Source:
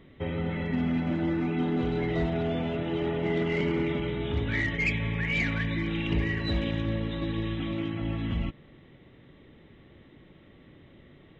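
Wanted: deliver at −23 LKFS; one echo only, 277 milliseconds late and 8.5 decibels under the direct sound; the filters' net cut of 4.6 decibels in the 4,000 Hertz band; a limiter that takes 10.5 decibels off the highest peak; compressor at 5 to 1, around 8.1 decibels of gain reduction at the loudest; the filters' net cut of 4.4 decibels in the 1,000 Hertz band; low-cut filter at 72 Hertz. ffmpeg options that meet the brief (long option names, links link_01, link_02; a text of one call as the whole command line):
ffmpeg -i in.wav -af "highpass=72,equalizer=frequency=1000:width_type=o:gain=-6,equalizer=frequency=4000:width_type=o:gain=-6,acompressor=threshold=-33dB:ratio=5,alimiter=level_in=11.5dB:limit=-24dB:level=0:latency=1,volume=-11.5dB,aecho=1:1:277:0.376,volume=19.5dB" out.wav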